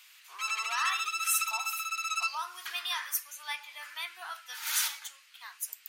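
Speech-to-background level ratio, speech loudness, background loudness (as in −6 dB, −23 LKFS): −2.0 dB, −34.0 LKFS, −32.0 LKFS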